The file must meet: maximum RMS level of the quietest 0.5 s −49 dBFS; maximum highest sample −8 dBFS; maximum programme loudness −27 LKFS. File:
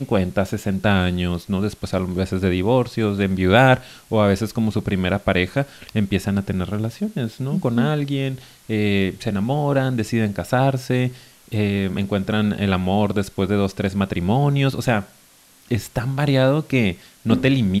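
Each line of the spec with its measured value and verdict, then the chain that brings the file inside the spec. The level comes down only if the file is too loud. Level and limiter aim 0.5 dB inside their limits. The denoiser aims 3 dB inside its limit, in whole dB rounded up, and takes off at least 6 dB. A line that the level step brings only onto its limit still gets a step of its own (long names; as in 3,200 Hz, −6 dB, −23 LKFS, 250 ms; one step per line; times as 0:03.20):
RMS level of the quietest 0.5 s −52 dBFS: in spec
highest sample −1.5 dBFS: out of spec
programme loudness −21.0 LKFS: out of spec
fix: level −6.5 dB
brickwall limiter −8.5 dBFS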